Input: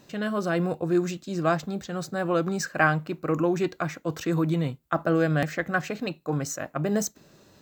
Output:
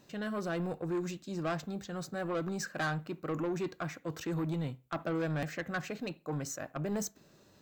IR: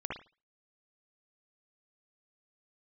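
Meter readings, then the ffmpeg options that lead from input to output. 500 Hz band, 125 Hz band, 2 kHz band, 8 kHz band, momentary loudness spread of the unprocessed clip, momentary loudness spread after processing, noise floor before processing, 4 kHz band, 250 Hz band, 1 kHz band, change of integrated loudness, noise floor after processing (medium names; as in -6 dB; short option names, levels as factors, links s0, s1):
-10.0 dB, -9.0 dB, -10.5 dB, -7.5 dB, 8 LU, 5 LU, -59 dBFS, -7.0 dB, -9.0 dB, -10.5 dB, -9.5 dB, -63 dBFS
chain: -filter_complex "[0:a]asoftclip=type=tanh:threshold=0.0794,asplit=2[s0][s1];[1:a]atrim=start_sample=2205[s2];[s1][s2]afir=irnorm=-1:irlink=0,volume=0.0794[s3];[s0][s3]amix=inputs=2:normalize=0,volume=0.447"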